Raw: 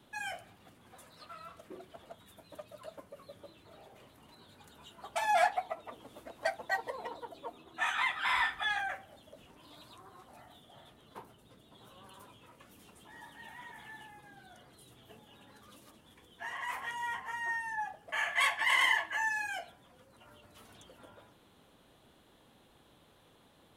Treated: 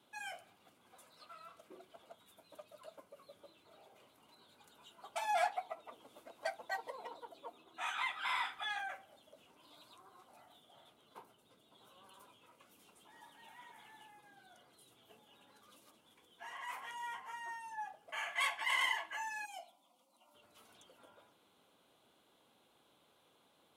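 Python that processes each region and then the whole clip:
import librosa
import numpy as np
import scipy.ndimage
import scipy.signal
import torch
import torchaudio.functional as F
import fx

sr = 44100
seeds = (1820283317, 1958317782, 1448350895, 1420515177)

y = fx.chain(x, sr, fx.low_shelf(hz=200.0, db=-9.0),
    fx.fixed_phaser(hz=440.0, stages=6), at=(19.45, 20.35))
y = fx.highpass(y, sr, hz=390.0, slope=6)
y = fx.notch(y, sr, hz=1800.0, q=7.0)
y = F.gain(torch.from_numpy(y), -5.0).numpy()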